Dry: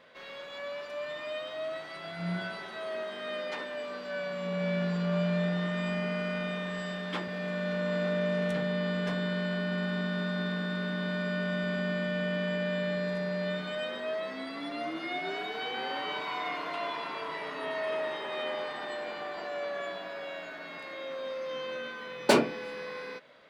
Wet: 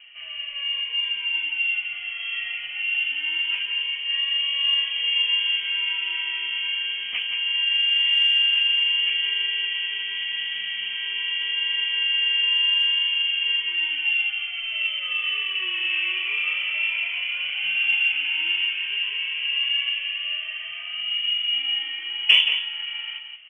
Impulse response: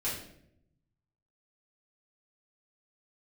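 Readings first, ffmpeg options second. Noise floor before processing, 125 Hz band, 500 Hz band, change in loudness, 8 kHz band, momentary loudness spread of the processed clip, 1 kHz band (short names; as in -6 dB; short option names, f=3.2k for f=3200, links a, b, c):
-43 dBFS, under -35 dB, under -20 dB, +11.5 dB, n/a, 9 LU, -10.0 dB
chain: -filter_complex "[0:a]highpass=220,acrossover=split=350[a][b];[a]acompressor=threshold=-53dB:ratio=6[c];[c][b]amix=inputs=2:normalize=0,aeval=exprs='(tanh(8.91*val(0)+0.2)-tanh(0.2))/8.91':c=same,lowpass=f=2.9k:t=q:w=0.5098,lowpass=f=2.9k:t=q:w=0.6013,lowpass=f=2.9k:t=q:w=0.9,lowpass=f=2.9k:t=q:w=2.563,afreqshift=-3400,flanger=delay=4:depth=5.1:regen=67:speed=0.84:shape=triangular,asplit=2[d][e];[e]adelay=174.9,volume=-7dB,highshelf=f=4k:g=-3.94[f];[d][f]amix=inputs=2:normalize=0,aexciter=amount=9.2:drive=5.3:freq=2.2k,volume=-1dB"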